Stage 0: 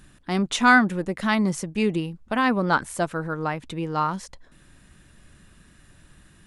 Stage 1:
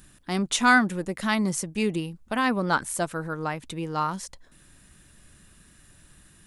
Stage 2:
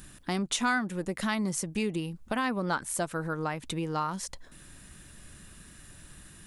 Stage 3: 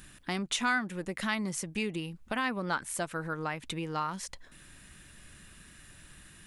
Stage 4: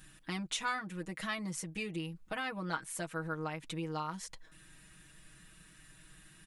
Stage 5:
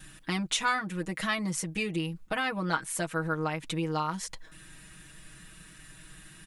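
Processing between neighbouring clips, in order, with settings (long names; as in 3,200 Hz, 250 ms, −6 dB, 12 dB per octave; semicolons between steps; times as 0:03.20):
high-shelf EQ 6,100 Hz +11.5 dB; level −3 dB
downward compressor 2.5 to 1, threshold −35 dBFS, peak gain reduction 14 dB; level +4 dB
parametric band 2,300 Hz +6 dB 1.6 octaves; level −4 dB
comb filter 6.3 ms, depth 92%; level −7.5 dB
noise gate with hold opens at −49 dBFS; level +7.5 dB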